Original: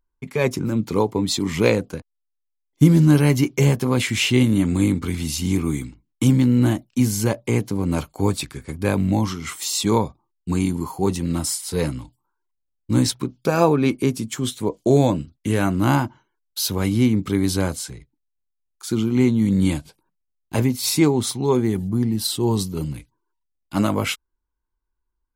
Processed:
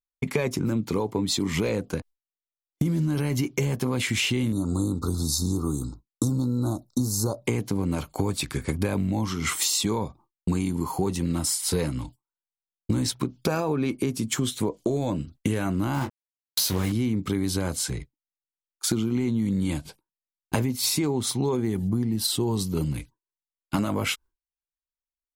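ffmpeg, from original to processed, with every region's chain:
-filter_complex "[0:a]asettb=1/sr,asplit=3[a][b][c];[a]atrim=end=4.524[d];[b]atrim=start=4.52:end=7.42,asetpts=PTS-STARTPTS,afade=t=in:d=0.004:c=qsin,afade=t=out:st=2.896:d=0.004:c=qsin,asuperstop=centerf=2300:order=20:qfactor=1,equalizer=f=210:t=o:w=1.4:g=-5[e];[c]atrim=start=7.416[f];[d][e]acrossfade=d=0.004:c1=hsin:c2=qsin[g];[g][f]acrossfade=d=0.004:c1=qsin:c2=hsin,asettb=1/sr,asplit=3[h][i][j];[h]atrim=end=15.944[k];[i]atrim=start=15.94:end=16.92,asetpts=PTS-STARTPTS,afade=t=in:d=0.004:c=qsin,afade=t=out:st=0.976:d=0.004:c=qsin,acrusher=bits=4:mix=0:aa=0.5,asplit=2[l][m];[m]adelay=22,volume=-7dB[n];[l][n]amix=inputs=2:normalize=0,atrim=end_sample=43218[o];[j]atrim=start=16.916[p];[k][o]acrossfade=d=0.004:c1=hsin:c2=qsin[q];[q][p]acrossfade=d=0.004:c1=qsin:c2=hsin,agate=range=-33dB:threshold=-40dB:ratio=3:detection=peak,alimiter=limit=-11.5dB:level=0:latency=1:release=10,acompressor=threshold=-30dB:ratio=10,volume=8dB"

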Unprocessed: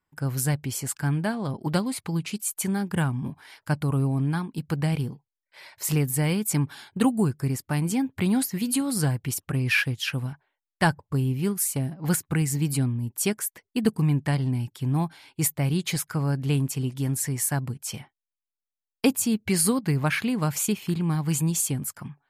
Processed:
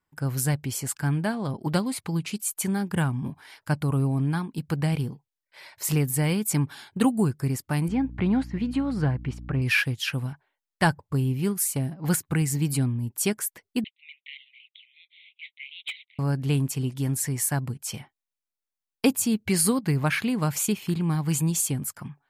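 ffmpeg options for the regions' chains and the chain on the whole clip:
-filter_complex "[0:a]asettb=1/sr,asplit=3[a][b][c];[a]atrim=end=7.884[d];[b]atrim=start=7.88:end=9.62,asetpts=PTS-STARTPTS,afade=t=in:d=0.004:c=qsin,afade=t=out:st=1.736:d=0.004:c=qsin,lowpass=2.3k,aeval=exprs='val(0)+0.0126*(sin(2*PI*60*n/s)+sin(2*PI*2*60*n/s)/2+sin(2*PI*3*60*n/s)/3+sin(2*PI*4*60*n/s)/4+sin(2*PI*5*60*n/s)/5)':c=same[e];[c]atrim=start=9.616[f];[d][e]acrossfade=d=0.004:c1=hsin:c2=qsin[g];[g][f]acrossfade=d=0.004:c1=qsin:c2=hsin,asettb=1/sr,asplit=3[h][i][j];[h]atrim=end=13.844[k];[i]atrim=start=13.84:end=16.19,asetpts=PTS-STARTPTS,afade=t=in:d=0.004:c=qsin,afade=t=out:st=2.346:d=0.004:c=qsin,asuperpass=centerf=2800:order=20:qfactor=1.5,asoftclip=type=hard:threshold=-26.5dB[l];[j]atrim=start=16.186[m];[k][l]acrossfade=d=0.004:c1=hsin:c2=qsin[n];[n][m]acrossfade=d=0.004:c1=qsin:c2=hsin"

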